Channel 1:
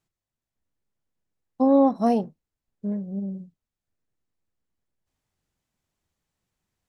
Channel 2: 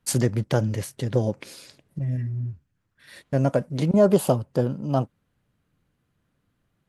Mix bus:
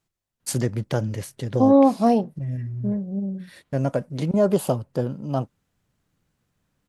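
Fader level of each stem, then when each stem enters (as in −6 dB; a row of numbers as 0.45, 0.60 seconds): +3.0, −2.0 decibels; 0.00, 0.40 seconds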